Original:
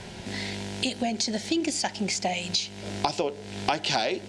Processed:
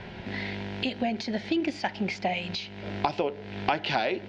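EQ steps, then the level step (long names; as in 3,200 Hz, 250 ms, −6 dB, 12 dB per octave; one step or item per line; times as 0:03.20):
high-frequency loss of the air 290 metres
parametric band 2,000 Hz +4.5 dB 1.6 octaves
0.0 dB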